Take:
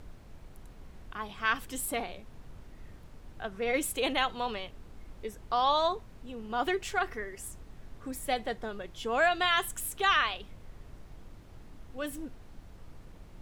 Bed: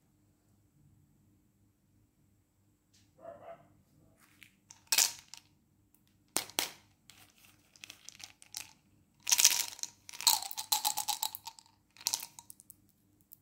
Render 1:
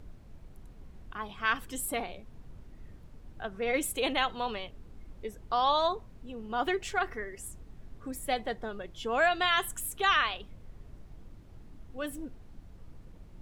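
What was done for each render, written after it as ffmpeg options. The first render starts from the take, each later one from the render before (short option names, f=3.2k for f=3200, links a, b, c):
-af "afftdn=nr=6:nf=-52"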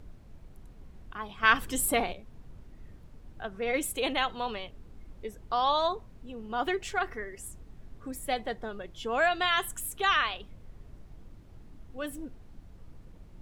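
-filter_complex "[0:a]asplit=3[a][b][c];[a]atrim=end=1.432[d];[b]atrim=start=1.428:end=2.132,asetpts=PTS-STARTPTS,volume=6.5dB[e];[c]atrim=start=2.128[f];[d][e]acrossfade=d=0.004:c1=hsin:c2=hsin[g];[g][f]acrossfade=d=0.004:c1=hsin:c2=hsin"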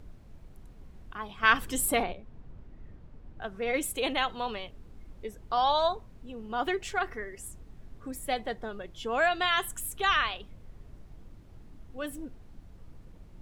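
-filter_complex "[0:a]asettb=1/sr,asplit=3[a][b][c];[a]atrim=end=2.034[d];[b]atrim=start=2.03:end=3.42,asetpts=PTS-STARTPTS,afade=t=in:d=0.004:c=qsin,afade=t=out:st=1.386:d=0.004:c=qsin,aemphasis=mode=reproduction:type=75fm[e];[c]atrim=start=3.416[f];[d][e]acrossfade=d=0.004:c1=hsin:c2=qsin[g];[g][f]acrossfade=d=0.004:c1=qsin:c2=hsin,asettb=1/sr,asplit=3[h][i][j];[h]atrim=end=5.574[k];[i]atrim=start=5.57:end=5.97,asetpts=PTS-STARTPTS,afade=t=in:d=0.004:c=qsin,afade=t=out:st=0.396:d=0.004:c=qsin,aecho=1:1:1.3:0.47,atrim=end_sample=17640[l];[j]atrim=start=5.966[m];[k][l]acrossfade=d=0.004:c1=hsin:c2=qsin[n];[n][m]acrossfade=d=0.004:c1=qsin:c2=hsin,asettb=1/sr,asplit=3[o][p][q];[o]atrim=end=9.724[r];[p]atrim=start=9.72:end=10.29,asetpts=PTS-STARTPTS,afade=t=in:d=0.004:c=qsin,afade=t=out:st=0.566:d=0.004:c=qsin,asubboost=boost=6:cutoff=210[s];[q]atrim=start=10.286[t];[r][s]acrossfade=d=0.004:c1=hsin:c2=qsin[u];[u][t]acrossfade=d=0.004:c1=qsin:c2=hsin"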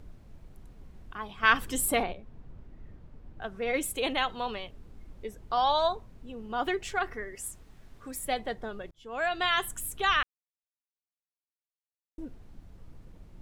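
-filter_complex "[0:a]asettb=1/sr,asplit=3[a][b][c];[a]atrim=end=7.354[d];[b]atrim=start=7.35:end=8.25,asetpts=PTS-STARTPTS,afade=t=in:d=0.004:c=qsin,afade=t=out:st=0.896:d=0.004:c=qsin,tiltshelf=f=710:g=-5[e];[c]atrim=start=8.246[f];[d][e]acrossfade=d=0.004:c1=hsin:c2=qsin[g];[g][f]acrossfade=d=0.004:c1=qsin:c2=hsin,asplit=4[h][i][j][k];[h]atrim=end=8.91,asetpts=PTS-STARTPTS,afade=t=out:st=8.906:d=0.004:c=hsin[l];[i]atrim=start=8.91:end=10.23,asetpts=PTS-STARTPTS,afade=t=in:d=0.55,afade=t=out:st=1.316:d=0.004:c=hsin[m];[j]atrim=start=10.23:end=12.18,asetpts=PTS-STARTPTS,volume=0[n];[k]atrim=start=12.18,asetpts=PTS-STARTPTS,afade=t=in:d=0.004:c=hsin[o];[l][m][n][o]concat=n=4:v=0:a=1"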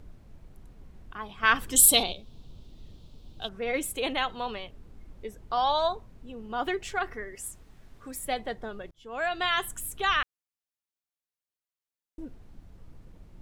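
-filter_complex "[0:a]asettb=1/sr,asplit=3[a][b][c];[a]atrim=end=1.764[d];[b]atrim=start=1.76:end=3.49,asetpts=PTS-STARTPTS,afade=t=in:d=0.004:c=qsin,afade=t=out:st=1.726:d=0.004:c=qsin,highshelf=f=2.6k:t=q:w=3:g=12[e];[c]atrim=start=3.486[f];[d][e]acrossfade=d=0.004:c1=hsin:c2=qsin[g];[g][f]acrossfade=d=0.004:c1=qsin:c2=hsin"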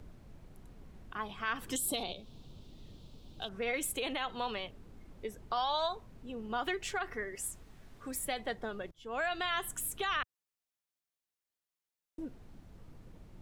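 -filter_complex "[0:a]acrossover=split=98|1100[a][b][c];[a]acompressor=threshold=-51dB:ratio=4[d];[b]acompressor=threshold=-35dB:ratio=4[e];[c]acompressor=threshold=-32dB:ratio=4[f];[d][e][f]amix=inputs=3:normalize=0,alimiter=limit=-24dB:level=0:latency=1:release=65"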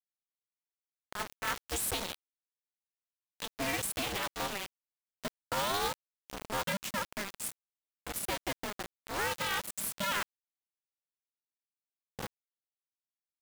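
-af "acrusher=bits=5:mix=0:aa=0.000001,aeval=exprs='val(0)*sgn(sin(2*PI*200*n/s))':c=same"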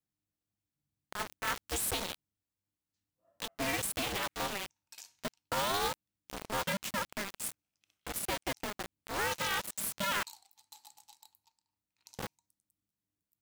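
-filter_complex "[1:a]volume=-24dB[a];[0:a][a]amix=inputs=2:normalize=0"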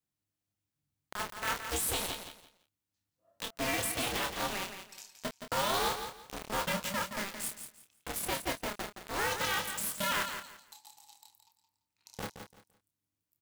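-filter_complex "[0:a]asplit=2[a][b];[b]adelay=28,volume=-6.5dB[c];[a][c]amix=inputs=2:normalize=0,asplit=2[d][e];[e]aecho=0:1:170|340|510:0.376|0.0902|0.0216[f];[d][f]amix=inputs=2:normalize=0"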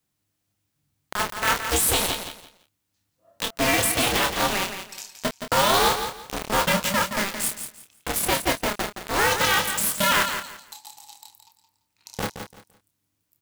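-af "volume=11.5dB"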